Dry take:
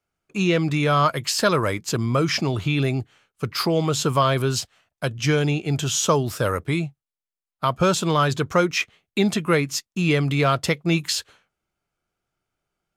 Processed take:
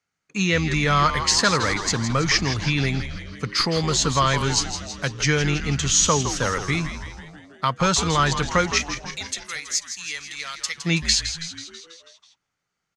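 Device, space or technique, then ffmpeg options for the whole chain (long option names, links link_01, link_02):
car door speaker: -filter_complex "[0:a]highpass=100,equalizer=frequency=360:width_type=q:width=4:gain=-8,equalizer=frequency=630:width_type=q:width=4:gain=-7,equalizer=frequency=1900:width_type=q:width=4:gain=9,equalizer=frequency=4300:width_type=q:width=4:gain=6,equalizer=frequency=6300:width_type=q:width=4:gain=8,lowpass=frequency=8900:width=0.5412,lowpass=frequency=8900:width=1.3066,asettb=1/sr,asplit=3[link_01][link_02][link_03];[link_01]atrim=end=8.784[link_04];[link_02]atrim=start=8.78:end=10.78,asetpts=PTS-STARTPTS,afade=type=in:duration=0.004:curve=qsin,afade=type=out:start_time=1.996:duration=0.004:curve=qsin,aderivative[link_05];[link_03]atrim=start=10.776[link_06];[link_04][link_05]acrossfade=duration=0.004:curve1=hsin:curve2=qsin[link_07];[link_07][link_06]acrossfade=duration=0.004:curve1=qsin:curve2=hsin,asplit=8[link_08][link_09][link_10][link_11][link_12][link_13][link_14][link_15];[link_09]adelay=163,afreqshift=-110,volume=-9.5dB[link_16];[link_10]adelay=326,afreqshift=-220,volume=-13.9dB[link_17];[link_11]adelay=489,afreqshift=-330,volume=-18.4dB[link_18];[link_12]adelay=652,afreqshift=-440,volume=-22.8dB[link_19];[link_13]adelay=815,afreqshift=-550,volume=-27.2dB[link_20];[link_14]adelay=978,afreqshift=-660,volume=-31.7dB[link_21];[link_15]adelay=1141,afreqshift=-770,volume=-36.1dB[link_22];[link_08][link_16][link_17][link_18][link_19][link_20][link_21][link_22]amix=inputs=8:normalize=0"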